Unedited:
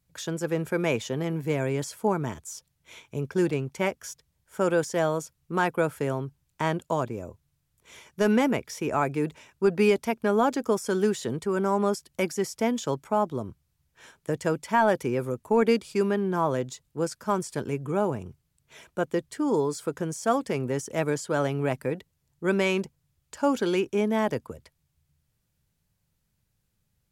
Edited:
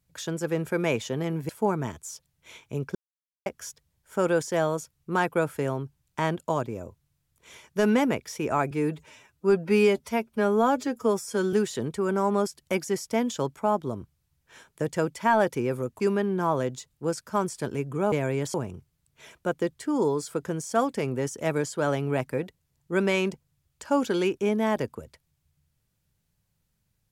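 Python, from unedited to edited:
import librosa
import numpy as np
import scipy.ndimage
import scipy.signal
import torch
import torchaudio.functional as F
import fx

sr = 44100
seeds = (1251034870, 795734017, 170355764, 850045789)

y = fx.edit(x, sr, fx.move(start_s=1.49, length_s=0.42, to_s=18.06),
    fx.silence(start_s=3.37, length_s=0.51),
    fx.stretch_span(start_s=9.13, length_s=1.88, factor=1.5),
    fx.cut(start_s=15.48, length_s=0.46), tone=tone)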